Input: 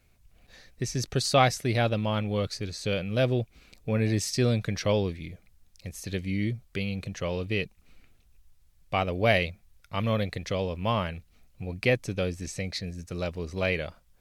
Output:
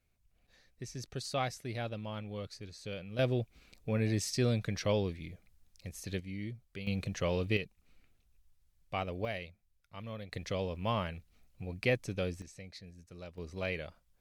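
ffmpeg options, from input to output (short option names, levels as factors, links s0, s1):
-af "asetnsamples=n=441:p=0,asendcmd='3.19 volume volume -5.5dB;6.2 volume volume -12dB;6.87 volume volume -1.5dB;7.57 volume volume -9dB;9.25 volume volume -16.5dB;10.32 volume volume -6dB;12.42 volume volume -16dB;13.38 volume volume -9dB',volume=0.224"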